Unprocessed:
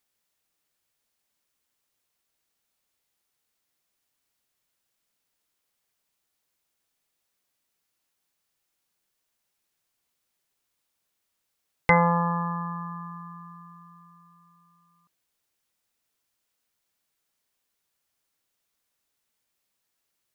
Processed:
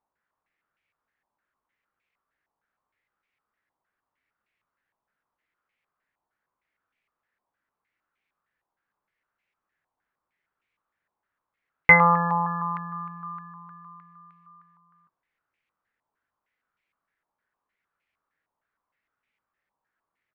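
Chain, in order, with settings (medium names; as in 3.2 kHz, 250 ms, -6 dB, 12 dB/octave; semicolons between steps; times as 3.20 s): doubling 19 ms -10.5 dB; step-sequenced low-pass 6.5 Hz 950–2300 Hz; trim -2 dB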